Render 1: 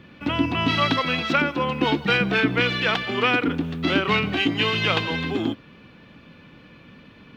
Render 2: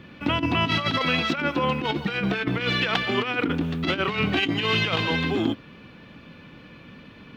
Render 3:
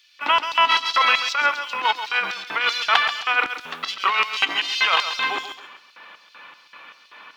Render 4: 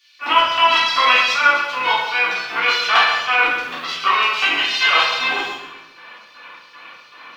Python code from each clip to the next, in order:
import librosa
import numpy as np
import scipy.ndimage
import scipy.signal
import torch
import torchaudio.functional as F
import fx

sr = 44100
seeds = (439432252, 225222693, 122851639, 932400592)

y1 = fx.over_compress(x, sr, threshold_db=-23.0, ratio=-0.5)
y2 = fx.filter_lfo_highpass(y1, sr, shape='square', hz=2.6, low_hz=990.0, high_hz=5200.0, q=1.9)
y2 = fx.echo_feedback(y2, sr, ms=135, feedback_pct=29, wet_db=-10.5)
y2 = y2 * 10.0 ** (5.5 / 20.0)
y3 = fx.room_shoebox(y2, sr, seeds[0], volume_m3=210.0, walls='mixed', distance_m=3.4)
y3 = y3 * 10.0 ** (-6.0 / 20.0)